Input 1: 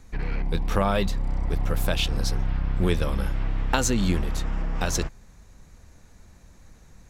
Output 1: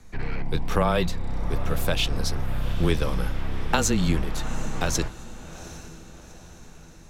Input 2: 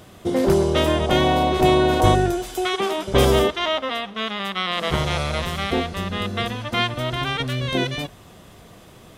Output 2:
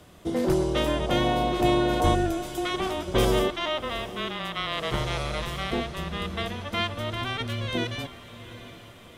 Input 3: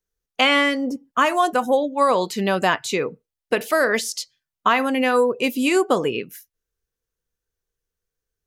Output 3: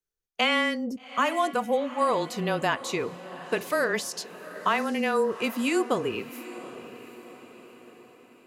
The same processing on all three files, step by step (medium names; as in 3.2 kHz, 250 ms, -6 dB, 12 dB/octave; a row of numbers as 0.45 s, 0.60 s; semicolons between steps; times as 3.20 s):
frequency shift -18 Hz; echo that smears into a reverb 781 ms, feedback 49%, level -15 dB; normalise loudness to -27 LUFS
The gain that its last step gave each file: +1.0 dB, -6.0 dB, -6.5 dB